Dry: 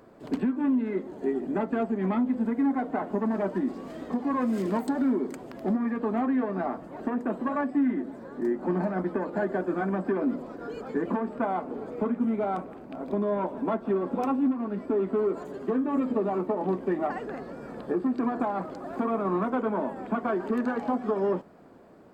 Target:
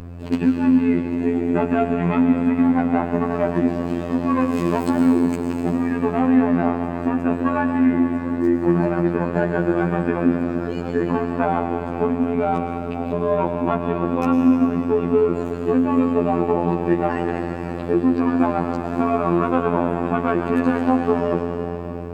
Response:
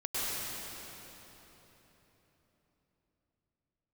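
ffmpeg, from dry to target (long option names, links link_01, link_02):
-filter_complex "[0:a]asplit=2[link_01][link_02];[1:a]atrim=start_sample=2205,lowshelf=frequency=100:gain=12,highshelf=frequency=2100:gain=7.5[link_03];[link_02][link_03]afir=irnorm=-1:irlink=0,volume=-12.5dB[link_04];[link_01][link_04]amix=inputs=2:normalize=0,aeval=exprs='val(0)+0.0158*(sin(2*PI*50*n/s)+sin(2*PI*2*50*n/s)/2+sin(2*PI*3*50*n/s)/3+sin(2*PI*4*50*n/s)/4+sin(2*PI*5*50*n/s)/5)':channel_layout=same,afftfilt=real='hypot(re,im)*cos(PI*b)':imag='0':win_size=2048:overlap=0.75,equalizer=frequency=2600:width_type=o:width=0.21:gain=10,volume=8.5dB"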